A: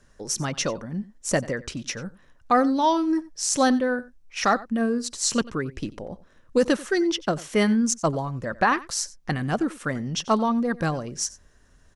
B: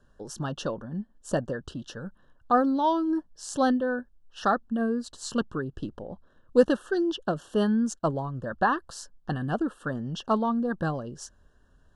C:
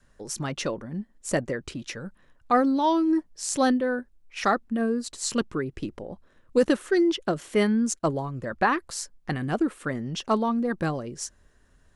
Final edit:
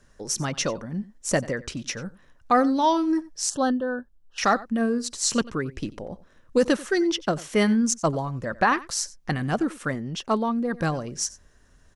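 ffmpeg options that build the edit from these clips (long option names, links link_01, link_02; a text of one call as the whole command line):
ffmpeg -i take0.wav -i take1.wav -i take2.wav -filter_complex "[0:a]asplit=3[link_01][link_02][link_03];[link_01]atrim=end=3.502[link_04];[1:a]atrim=start=3.498:end=4.382[link_05];[link_02]atrim=start=4.378:end=9.952[link_06];[2:a]atrim=start=9.948:end=10.732[link_07];[link_03]atrim=start=10.728[link_08];[link_04][link_05]acrossfade=duration=0.004:curve1=hsin:curve2=hsin[link_09];[link_09][link_06]acrossfade=duration=0.004:curve1=hsin:curve2=hsin[link_10];[link_10][link_07]acrossfade=duration=0.004:curve1=hsin:curve2=hsin[link_11];[link_11][link_08]acrossfade=duration=0.004:curve1=hsin:curve2=hsin" out.wav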